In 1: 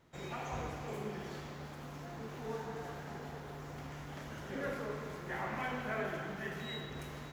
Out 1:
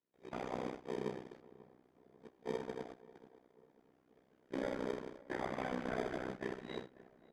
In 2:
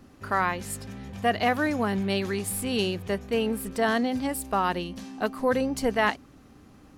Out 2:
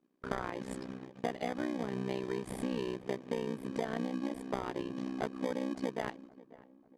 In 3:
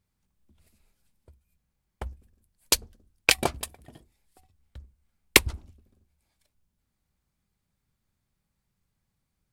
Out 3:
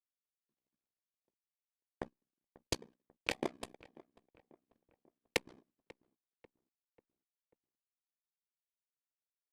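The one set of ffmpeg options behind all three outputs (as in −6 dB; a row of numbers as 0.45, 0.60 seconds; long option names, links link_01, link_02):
-filter_complex "[0:a]highpass=frequency=240:width=0.5412,highpass=frequency=240:width=1.3066,agate=range=-25dB:threshold=-43dB:ratio=16:detection=peak,tiltshelf=frequency=640:gain=5.5,asplit=2[link_01][link_02];[link_02]acrusher=samples=32:mix=1:aa=0.000001,volume=-3.5dB[link_03];[link_01][link_03]amix=inputs=2:normalize=0,adynamicsmooth=sensitivity=1:basefreq=5900,tremolo=f=63:d=1,acompressor=threshold=-35dB:ratio=6,asplit=2[link_04][link_05];[link_05]adelay=541,lowpass=frequency=1600:poles=1,volume=-20dB,asplit=2[link_06][link_07];[link_07]adelay=541,lowpass=frequency=1600:poles=1,volume=0.49,asplit=2[link_08][link_09];[link_09]adelay=541,lowpass=frequency=1600:poles=1,volume=0.49,asplit=2[link_10][link_11];[link_11]adelay=541,lowpass=frequency=1600:poles=1,volume=0.49[link_12];[link_06][link_08][link_10][link_12]amix=inputs=4:normalize=0[link_13];[link_04][link_13]amix=inputs=2:normalize=0,aresample=32000,aresample=44100,volume=2.5dB" -ar 48000 -c:a libopus -b:a 256k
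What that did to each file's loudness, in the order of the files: −0.5, −10.5, −17.5 LU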